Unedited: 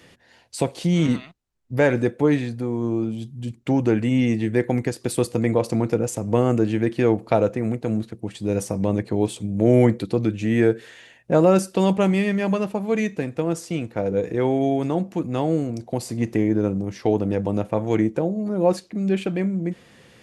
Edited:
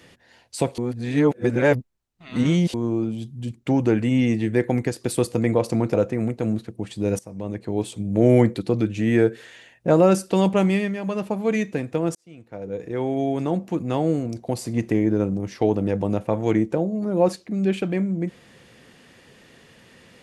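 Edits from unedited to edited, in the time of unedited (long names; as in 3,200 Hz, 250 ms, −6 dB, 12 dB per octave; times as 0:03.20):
0:00.78–0:02.74: reverse
0:05.94–0:07.38: remove
0:08.63–0:09.55: fade in, from −18 dB
0:12.18–0:12.72: duck −8 dB, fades 0.27 s
0:13.59–0:15.05: fade in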